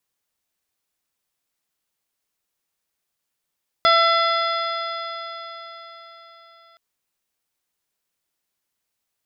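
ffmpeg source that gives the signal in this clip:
ffmpeg -f lavfi -i "aevalsrc='0.126*pow(10,-3*t/4.5)*sin(2*PI*667.9*t)+0.2*pow(10,-3*t/4.5)*sin(2*PI*1341.18*t)+0.0794*pow(10,-3*t/4.5)*sin(2*PI*2025.17*t)+0.0168*pow(10,-3*t/4.5)*sin(2*PI*2725.02*t)+0.0891*pow(10,-3*t/4.5)*sin(2*PI*3445.72*t)+0.0335*pow(10,-3*t/4.5)*sin(2*PI*4191.99*t)+0.0596*pow(10,-3*t/4.5)*sin(2*PI*4968.26*t)':duration=2.92:sample_rate=44100" out.wav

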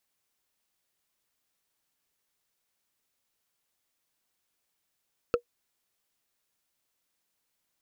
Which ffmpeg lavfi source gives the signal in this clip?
ffmpeg -f lavfi -i "aevalsrc='0.168*pow(10,-3*t/0.09)*sin(2*PI*479*t)+0.0841*pow(10,-3*t/0.027)*sin(2*PI*1320.6*t)+0.0422*pow(10,-3*t/0.012)*sin(2*PI*2588.5*t)+0.0211*pow(10,-3*t/0.007)*sin(2*PI*4278.9*t)+0.0106*pow(10,-3*t/0.004)*sin(2*PI*6389.9*t)':duration=0.45:sample_rate=44100" out.wav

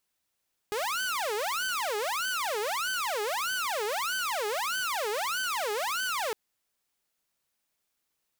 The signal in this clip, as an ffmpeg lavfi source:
ffmpeg -f lavfi -i "aevalsrc='0.0501*(2*mod((970.5*t-559.5/(2*PI*1.6)*sin(2*PI*1.6*t)),1)-1)':duration=5.61:sample_rate=44100" out.wav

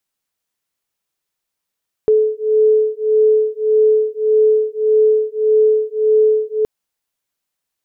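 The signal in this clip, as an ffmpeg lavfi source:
ffmpeg -f lavfi -i "aevalsrc='0.2*(sin(2*PI*431*t)+sin(2*PI*432.7*t))':duration=4.57:sample_rate=44100" out.wav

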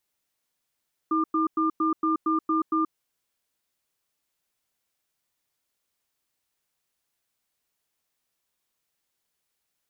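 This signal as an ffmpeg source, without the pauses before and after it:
ffmpeg -f lavfi -i "aevalsrc='0.0668*(sin(2*PI*319*t)+sin(2*PI*1200*t))*clip(min(mod(t,0.23),0.13-mod(t,0.23))/0.005,0,1)':duration=1.79:sample_rate=44100" out.wav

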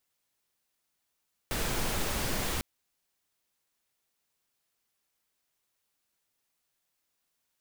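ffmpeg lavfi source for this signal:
ffmpeg -f lavfi -i "anoisesrc=color=pink:amplitude=0.145:duration=1.1:sample_rate=44100:seed=1" out.wav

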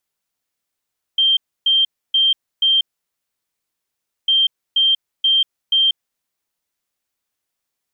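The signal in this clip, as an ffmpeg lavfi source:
ffmpeg -f lavfi -i "aevalsrc='0.266*sin(2*PI*3160*t)*clip(min(mod(mod(t,3.1),0.48),0.19-mod(mod(t,3.1),0.48))/0.005,0,1)*lt(mod(t,3.1),1.92)':duration=6.2:sample_rate=44100" out.wav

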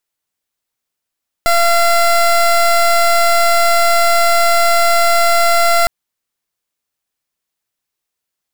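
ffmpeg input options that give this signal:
ffmpeg -f lavfi -i "aevalsrc='0.282*(2*lt(mod(684*t,1),0.22)-1)':duration=4.41:sample_rate=44100" out.wav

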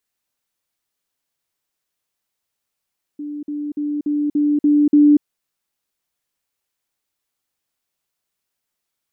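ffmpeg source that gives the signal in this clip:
ffmpeg -f lavfi -i "aevalsrc='pow(10,(-25.5+3*floor(t/0.29))/20)*sin(2*PI*294*t)*clip(min(mod(t,0.29),0.24-mod(t,0.29))/0.005,0,1)':duration=2.03:sample_rate=44100" out.wav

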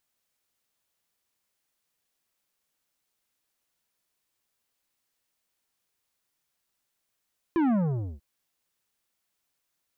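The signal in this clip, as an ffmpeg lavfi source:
ffmpeg -f lavfi -i "aevalsrc='0.0794*clip((0.64-t)/0.48,0,1)*tanh(3.55*sin(2*PI*350*0.64/log(65/350)*(exp(log(65/350)*t/0.64)-1)))/tanh(3.55)':duration=0.64:sample_rate=44100" out.wav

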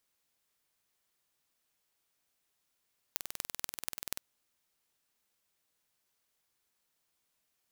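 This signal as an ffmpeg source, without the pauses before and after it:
ffmpeg -f lavfi -i "aevalsrc='0.531*eq(mod(n,2130),0)*(0.5+0.5*eq(mod(n,10650),0))':duration=1.03:sample_rate=44100" out.wav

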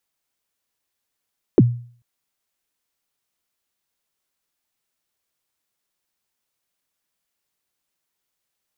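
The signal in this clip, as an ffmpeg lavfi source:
ffmpeg -f lavfi -i "aevalsrc='0.562*pow(10,-3*t/0.47)*sin(2*PI*(460*0.035/log(120/460)*(exp(log(120/460)*min(t,0.035)/0.035)-1)+120*max(t-0.035,0)))':duration=0.44:sample_rate=44100" out.wav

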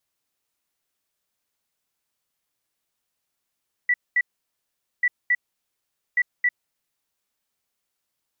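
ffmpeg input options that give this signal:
ffmpeg -f lavfi -i "aevalsrc='0.158*sin(2*PI*1960*t)*clip(min(mod(mod(t,1.14),0.27),0.05-mod(mod(t,1.14),0.27))/0.005,0,1)*lt(mod(t,1.14),0.54)':duration=3.42:sample_rate=44100" out.wav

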